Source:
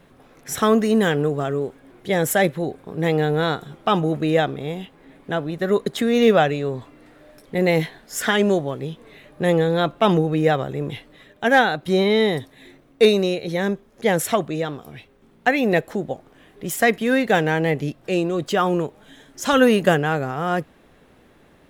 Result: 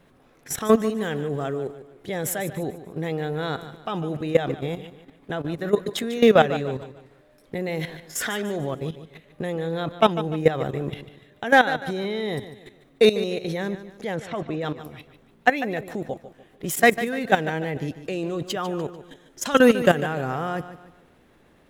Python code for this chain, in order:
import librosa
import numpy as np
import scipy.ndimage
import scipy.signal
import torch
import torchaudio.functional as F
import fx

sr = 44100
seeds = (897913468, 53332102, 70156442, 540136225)

p1 = fx.lowpass(x, sr, hz=2800.0, slope=12, at=(14.14, 14.6), fade=0.02)
p2 = fx.level_steps(p1, sr, step_db=15)
p3 = p2 + fx.echo_feedback(p2, sr, ms=147, feedback_pct=38, wet_db=-13.0, dry=0)
y = p3 * 10.0 ** (2.5 / 20.0)